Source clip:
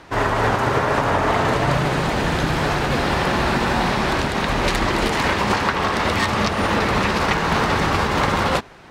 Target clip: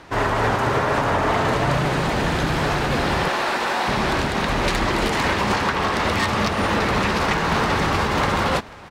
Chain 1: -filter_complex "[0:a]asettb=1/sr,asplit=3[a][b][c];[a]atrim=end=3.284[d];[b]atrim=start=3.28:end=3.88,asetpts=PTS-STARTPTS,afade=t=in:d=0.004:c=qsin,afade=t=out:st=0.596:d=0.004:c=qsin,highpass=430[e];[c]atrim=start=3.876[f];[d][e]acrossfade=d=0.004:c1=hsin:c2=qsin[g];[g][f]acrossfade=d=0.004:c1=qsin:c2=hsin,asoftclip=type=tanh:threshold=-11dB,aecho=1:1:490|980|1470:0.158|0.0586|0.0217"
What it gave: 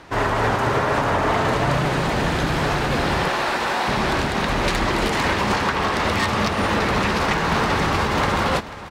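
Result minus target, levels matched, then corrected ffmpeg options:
echo-to-direct +7 dB
-filter_complex "[0:a]asettb=1/sr,asplit=3[a][b][c];[a]atrim=end=3.284[d];[b]atrim=start=3.28:end=3.88,asetpts=PTS-STARTPTS,afade=t=in:d=0.004:c=qsin,afade=t=out:st=0.596:d=0.004:c=qsin,highpass=430[e];[c]atrim=start=3.876[f];[d][e]acrossfade=d=0.004:c1=hsin:c2=qsin[g];[g][f]acrossfade=d=0.004:c1=qsin:c2=hsin,asoftclip=type=tanh:threshold=-11dB,aecho=1:1:490|980:0.0708|0.0262"

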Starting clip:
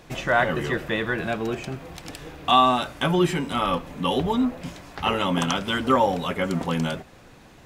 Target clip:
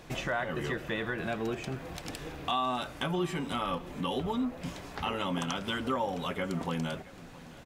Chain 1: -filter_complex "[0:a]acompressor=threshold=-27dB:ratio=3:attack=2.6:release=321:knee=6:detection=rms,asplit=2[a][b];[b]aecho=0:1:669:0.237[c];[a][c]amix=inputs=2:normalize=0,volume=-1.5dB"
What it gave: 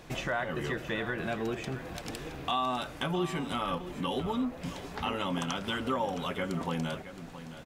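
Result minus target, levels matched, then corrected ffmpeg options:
echo-to-direct +7 dB
-filter_complex "[0:a]acompressor=threshold=-27dB:ratio=3:attack=2.6:release=321:knee=6:detection=rms,asplit=2[a][b];[b]aecho=0:1:669:0.106[c];[a][c]amix=inputs=2:normalize=0,volume=-1.5dB"

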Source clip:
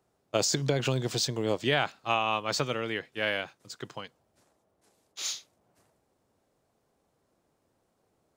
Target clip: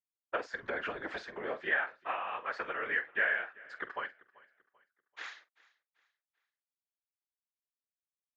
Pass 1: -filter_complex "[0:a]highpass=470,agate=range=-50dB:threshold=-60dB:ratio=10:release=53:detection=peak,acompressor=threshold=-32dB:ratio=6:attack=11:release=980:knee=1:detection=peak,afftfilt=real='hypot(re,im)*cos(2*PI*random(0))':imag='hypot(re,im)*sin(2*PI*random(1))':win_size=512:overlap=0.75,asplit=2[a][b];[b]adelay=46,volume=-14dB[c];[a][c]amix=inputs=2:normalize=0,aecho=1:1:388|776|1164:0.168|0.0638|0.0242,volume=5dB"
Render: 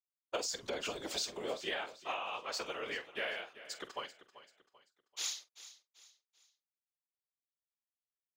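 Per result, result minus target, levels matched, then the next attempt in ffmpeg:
2000 Hz band -6.5 dB; echo-to-direct +7.5 dB
-filter_complex "[0:a]highpass=470,agate=range=-50dB:threshold=-60dB:ratio=10:release=53:detection=peak,acompressor=threshold=-32dB:ratio=6:attack=11:release=980:knee=1:detection=peak,lowpass=f=1.7k:t=q:w=5.3,afftfilt=real='hypot(re,im)*cos(2*PI*random(0))':imag='hypot(re,im)*sin(2*PI*random(1))':win_size=512:overlap=0.75,asplit=2[a][b];[b]adelay=46,volume=-14dB[c];[a][c]amix=inputs=2:normalize=0,aecho=1:1:388|776|1164:0.168|0.0638|0.0242,volume=5dB"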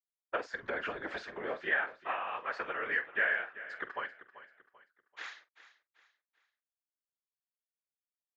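echo-to-direct +7.5 dB
-filter_complex "[0:a]highpass=470,agate=range=-50dB:threshold=-60dB:ratio=10:release=53:detection=peak,acompressor=threshold=-32dB:ratio=6:attack=11:release=980:knee=1:detection=peak,lowpass=f=1.7k:t=q:w=5.3,afftfilt=real='hypot(re,im)*cos(2*PI*random(0))':imag='hypot(re,im)*sin(2*PI*random(1))':win_size=512:overlap=0.75,asplit=2[a][b];[b]adelay=46,volume=-14dB[c];[a][c]amix=inputs=2:normalize=0,aecho=1:1:388|776|1164:0.0708|0.0269|0.0102,volume=5dB"

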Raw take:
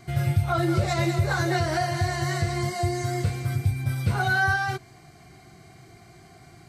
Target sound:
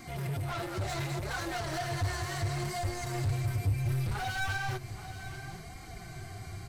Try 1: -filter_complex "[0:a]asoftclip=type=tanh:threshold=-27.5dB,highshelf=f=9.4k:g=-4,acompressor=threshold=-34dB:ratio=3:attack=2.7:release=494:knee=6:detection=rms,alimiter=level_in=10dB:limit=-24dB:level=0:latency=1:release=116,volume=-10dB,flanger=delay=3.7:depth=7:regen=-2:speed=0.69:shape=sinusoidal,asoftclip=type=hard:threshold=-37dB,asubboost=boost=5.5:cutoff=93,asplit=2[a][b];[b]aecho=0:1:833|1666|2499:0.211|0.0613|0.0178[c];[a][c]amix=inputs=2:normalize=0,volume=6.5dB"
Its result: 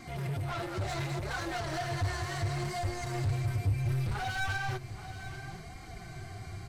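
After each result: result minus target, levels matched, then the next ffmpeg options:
compressor: peak gain reduction +4.5 dB; 8000 Hz band -3.0 dB
-filter_complex "[0:a]asoftclip=type=tanh:threshold=-27.5dB,highshelf=f=9.4k:g=-4,alimiter=level_in=10dB:limit=-24dB:level=0:latency=1:release=116,volume=-10dB,flanger=delay=3.7:depth=7:regen=-2:speed=0.69:shape=sinusoidal,asoftclip=type=hard:threshold=-37dB,asubboost=boost=5.5:cutoff=93,asplit=2[a][b];[b]aecho=0:1:833|1666|2499:0.211|0.0613|0.0178[c];[a][c]amix=inputs=2:normalize=0,volume=6.5dB"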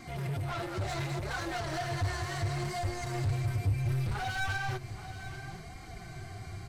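8000 Hz band -3.0 dB
-filter_complex "[0:a]asoftclip=type=tanh:threshold=-27.5dB,highshelf=f=9.4k:g=5.5,alimiter=level_in=10dB:limit=-24dB:level=0:latency=1:release=116,volume=-10dB,flanger=delay=3.7:depth=7:regen=-2:speed=0.69:shape=sinusoidal,asoftclip=type=hard:threshold=-37dB,asubboost=boost=5.5:cutoff=93,asplit=2[a][b];[b]aecho=0:1:833|1666|2499:0.211|0.0613|0.0178[c];[a][c]amix=inputs=2:normalize=0,volume=6.5dB"

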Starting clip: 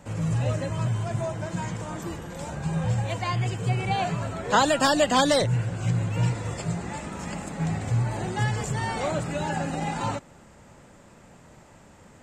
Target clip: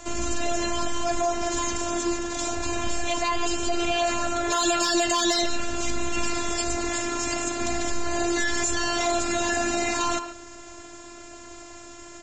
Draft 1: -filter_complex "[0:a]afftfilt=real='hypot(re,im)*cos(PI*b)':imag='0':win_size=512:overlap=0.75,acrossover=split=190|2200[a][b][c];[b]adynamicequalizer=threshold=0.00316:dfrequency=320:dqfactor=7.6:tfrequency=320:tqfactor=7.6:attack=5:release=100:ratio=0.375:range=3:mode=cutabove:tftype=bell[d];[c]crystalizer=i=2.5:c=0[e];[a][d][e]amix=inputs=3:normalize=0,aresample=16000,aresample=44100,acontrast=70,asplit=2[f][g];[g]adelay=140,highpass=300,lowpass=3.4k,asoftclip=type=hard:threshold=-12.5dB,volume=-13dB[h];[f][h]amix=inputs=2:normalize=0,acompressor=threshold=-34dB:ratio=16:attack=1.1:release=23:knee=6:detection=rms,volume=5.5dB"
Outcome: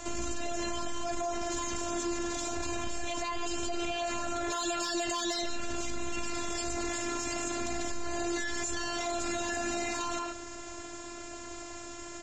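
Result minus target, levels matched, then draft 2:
compressor: peak gain reduction +10 dB
-filter_complex "[0:a]afftfilt=real='hypot(re,im)*cos(PI*b)':imag='0':win_size=512:overlap=0.75,acrossover=split=190|2200[a][b][c];[b]adynamicequalizer=threshold=0.00316:dfrequency=320:dqfactor=7.6:tfrequency=320:tqfactor=7.6:attack=5:release=100:ratio=0.375:range=3:mode=cutabove:tftype=bell[d];[c]crystalizer=i=2.5:c=0[e];[a][d][e]amix=inputs=3:normalize=0,aresample=16000,aresample=44100,acontrast=70,asplit=2[f][g];[g]adelay=140,highpass=300,lowpass=3.4k,asoftclip=type=hard:threshold=-12.5dB,volume=-13dB[h];[f][h]amix=inputs=2:normalize=0,acompressor=threshold=-23.5dB:ratio=16:attack=1.1:release=23:knee=6:detection=rms,volume=5.5dB"

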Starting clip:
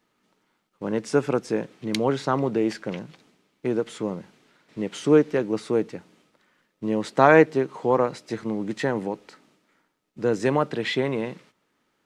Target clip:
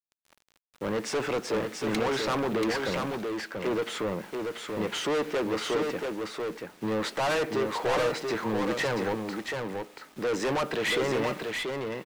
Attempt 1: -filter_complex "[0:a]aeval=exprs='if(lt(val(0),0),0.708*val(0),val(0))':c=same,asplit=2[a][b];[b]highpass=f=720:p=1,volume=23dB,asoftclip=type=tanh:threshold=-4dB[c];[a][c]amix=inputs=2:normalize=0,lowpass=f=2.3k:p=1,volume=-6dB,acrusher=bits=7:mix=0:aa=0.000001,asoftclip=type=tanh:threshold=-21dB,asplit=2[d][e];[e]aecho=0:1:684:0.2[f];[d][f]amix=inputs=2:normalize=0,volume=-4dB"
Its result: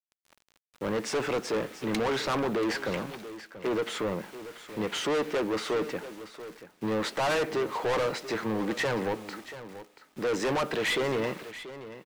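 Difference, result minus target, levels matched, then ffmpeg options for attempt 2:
echo-to-direct -9.5 dB
-filter_complex "[0:a]aeval=exprs='if(lt(val(0),0),0.708*val(0),val(0))':c=same,asplit=2[a][b];[b]highpass=f=720:p=1,volume=23dB,asoftclip=type=tanh:threshold=-4dB[c];[a][c]amix=inputs=2:normalize=0,lowpass=f=2.3k:p=1,volume=-6dB,acrusher=bits=7:mix=0:aa=0.000001,asoftclip=type=tanh:threshold=-21dB,asplit=2[d][e];[e]aecho=0:1:684:0.596[f];[d][f]amix=inputs=2:normalize=0,volume=-4dB"

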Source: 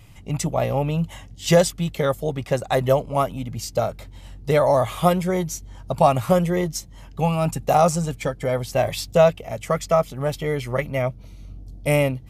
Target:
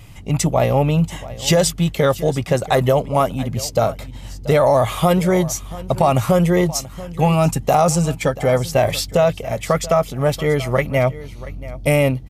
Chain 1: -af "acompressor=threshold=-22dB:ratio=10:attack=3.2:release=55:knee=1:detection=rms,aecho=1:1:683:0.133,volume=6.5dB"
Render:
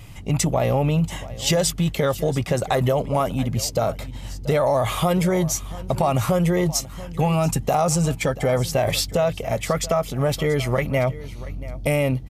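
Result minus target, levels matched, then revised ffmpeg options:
compressor: peak gain reduction +5.5 dB
-af "acompressor=threshold=-16dB:ratio=10:attack=3.2:release=55:knee=1:detection=rms,aecho=1:1:683:0.133,volume=6.5dB"

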